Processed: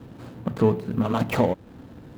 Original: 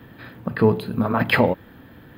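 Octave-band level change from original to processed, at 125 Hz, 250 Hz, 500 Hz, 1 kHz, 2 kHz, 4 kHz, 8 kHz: -2.0 dB, -2.0 dB, -3.0 dB, -4.0 dB, -12.0 dB, -8.5 dB, no reading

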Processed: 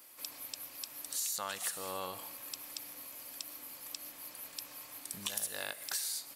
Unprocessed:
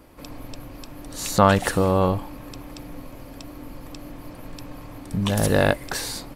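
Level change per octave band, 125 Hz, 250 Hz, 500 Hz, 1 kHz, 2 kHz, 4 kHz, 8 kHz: -35.5 dB, -30.0 dB, -25.0 dB, -20.0 dB, -16.0 dB, -8.0 dB, -3.5 dB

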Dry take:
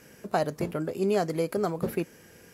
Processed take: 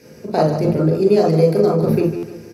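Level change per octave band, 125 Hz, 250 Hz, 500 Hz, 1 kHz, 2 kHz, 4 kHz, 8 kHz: +16.5 dB, +13.5 dB, +13.0 dB, +8.5 dB, +3.5 dB, +8.5 dB, no reading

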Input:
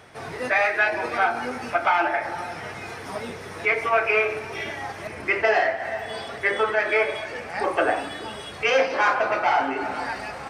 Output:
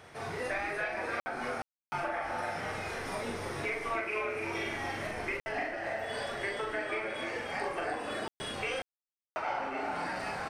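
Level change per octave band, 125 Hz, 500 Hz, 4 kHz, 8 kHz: -3.5 dB, -11.5 dB, -8.0 dB, -5.0 dB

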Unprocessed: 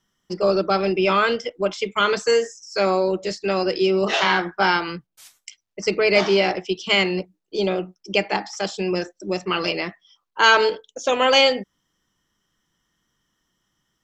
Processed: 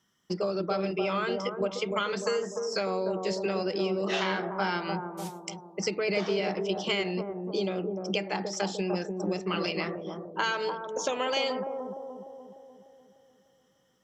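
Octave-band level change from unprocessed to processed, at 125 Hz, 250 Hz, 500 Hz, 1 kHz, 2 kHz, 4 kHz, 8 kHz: -4.0 dB, -6.0 dB, -8.5 dB, -10.5 dB, -12.0 dB, -11.5 dB, no reading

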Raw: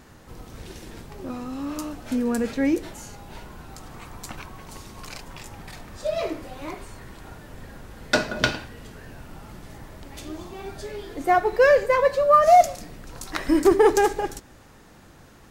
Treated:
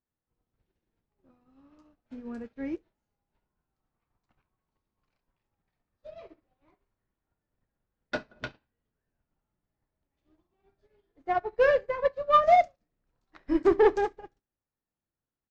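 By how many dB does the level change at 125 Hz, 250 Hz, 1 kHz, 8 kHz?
-15.0 dB, -9.5 dB, -6.5 dB, under -25 dB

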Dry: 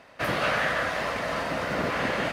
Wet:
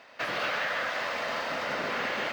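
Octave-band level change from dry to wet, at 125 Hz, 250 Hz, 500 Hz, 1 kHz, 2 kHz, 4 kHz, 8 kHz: -13.5 dB, -9.0 dB, -5.0 dB, -3.5 dB, -2.5 dB, -1.0 dB, -4.0 dB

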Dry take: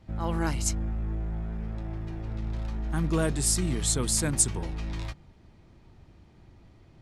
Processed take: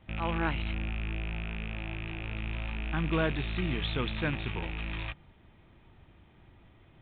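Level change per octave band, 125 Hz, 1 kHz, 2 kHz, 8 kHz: -4.0 dB, +0.5 dB, +5.5 dB, under -40 dB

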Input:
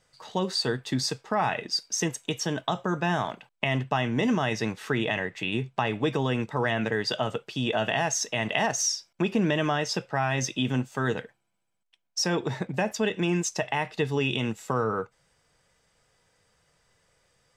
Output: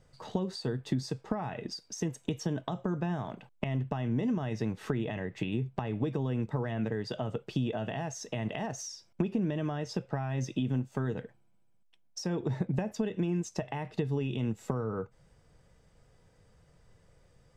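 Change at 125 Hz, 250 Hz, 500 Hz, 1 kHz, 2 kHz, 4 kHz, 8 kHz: -1.5 dB, -3.5 dB, -7.0 dB, -11.5 dB, -15.0 dB, -14.5 dB, -14.0 dB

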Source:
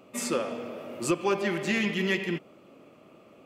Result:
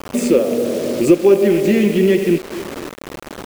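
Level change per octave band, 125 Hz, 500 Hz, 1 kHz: +12.5 dB, +17.0 dB, +4.0 dB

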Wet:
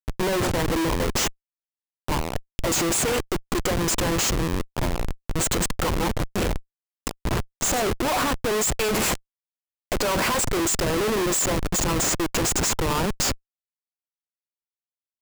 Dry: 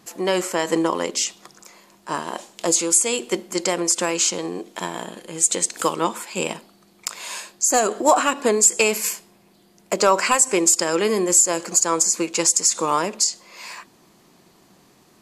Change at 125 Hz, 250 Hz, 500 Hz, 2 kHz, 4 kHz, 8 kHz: +10.5 dB, -0.5 dB, -3.5 dB, -1.0 dB, -1.5 dB, -7.5 dB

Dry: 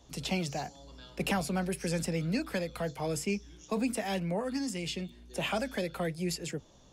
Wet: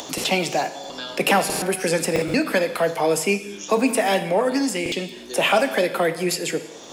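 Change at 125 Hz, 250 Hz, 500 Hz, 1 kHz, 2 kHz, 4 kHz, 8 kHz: +3.0 dB, +8.5 dB, +14.5 dB, +15.0 dB, +14.5 dB, +12.5 dB, +13.0 dB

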